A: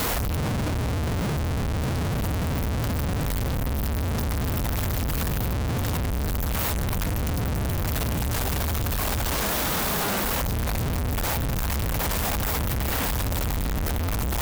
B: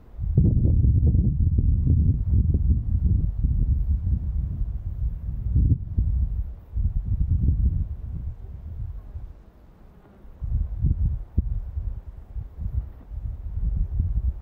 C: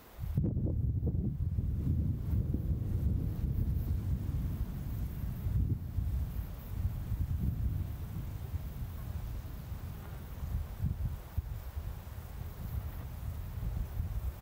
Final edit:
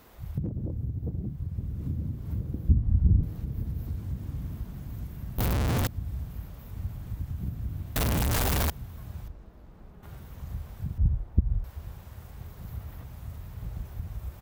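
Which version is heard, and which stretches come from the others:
C
0:02.69–0:03.23: punch in from B
0:05.38–0:05.87: punch in from A
0:07.96–0:08.70: punch in from A
0:09.28–0:10.03: punch in from B
0:10.98–0:11.64: punch in from B

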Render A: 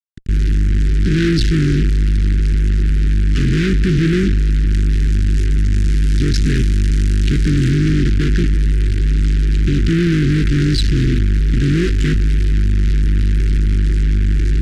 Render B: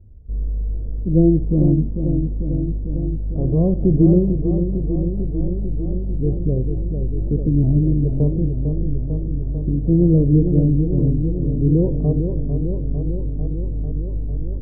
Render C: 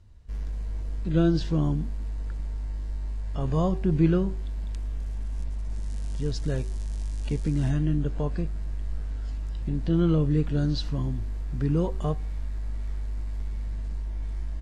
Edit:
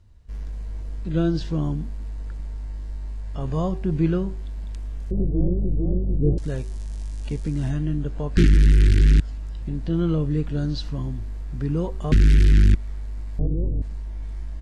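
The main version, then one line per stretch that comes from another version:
C
0:05.11–0:06.38: punch in from B
0:08.37–0:09.20: punch in from A
0:12.12–0:12.75: punch in from A
0:13.39–0:13.82: punch in from B

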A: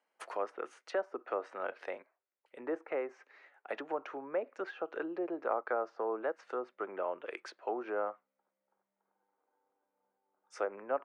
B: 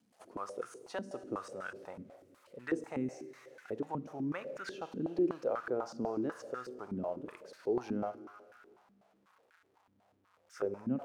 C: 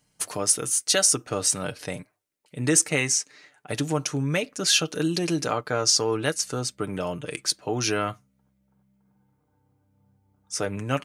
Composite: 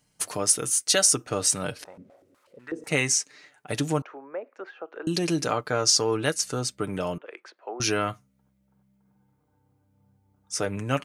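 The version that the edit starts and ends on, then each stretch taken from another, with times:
C
0:01.84–0:02.87: punch in from B
0:04.02–0:05.07: punch in from A
0:07.18–0:07.80: punch in from A

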